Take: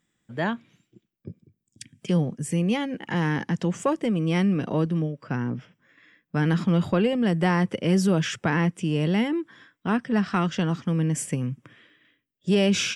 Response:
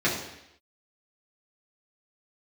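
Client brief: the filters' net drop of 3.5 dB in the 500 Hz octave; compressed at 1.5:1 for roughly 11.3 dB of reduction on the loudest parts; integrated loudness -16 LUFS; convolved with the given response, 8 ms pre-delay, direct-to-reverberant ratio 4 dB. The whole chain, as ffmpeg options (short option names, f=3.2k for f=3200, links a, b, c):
-filter_complex "[0:a]equalizer=f=500:t=o:g=-4.5,acompressor=threshold=-51dB:ratio=1.5,asplit=2[a][b];[1:a]atrim=start_sample=2205,adelay=8[c];[b][c]afir=irnorm=-1:irlink=0,volume=-18dB[d];[a][d]amix=inputs=2:normalize=0,volume=17.5dB"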